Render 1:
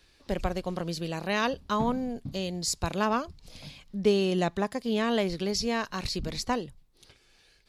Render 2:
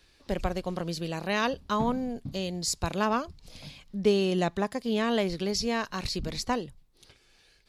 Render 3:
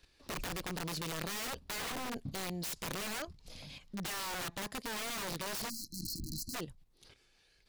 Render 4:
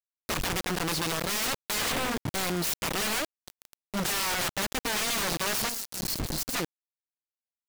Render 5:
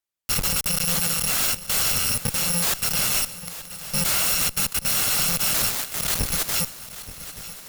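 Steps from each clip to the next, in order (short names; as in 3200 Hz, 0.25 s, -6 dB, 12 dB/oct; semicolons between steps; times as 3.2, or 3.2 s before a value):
nothing audible
wrapped overs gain 27 dB; level quantiser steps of 10 dB; spectral delete 5.69–6.54, 350–4000 Hz; gain +1 dB
companded quantiser 2-bit
FFT order left unsorted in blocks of 128 samples; added harmonics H 2 -13 dB, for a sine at -24.5 dBFS; swung echo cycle 1.172 s, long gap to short 3:1, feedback 40%, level -15 dB; gain +7.5 dB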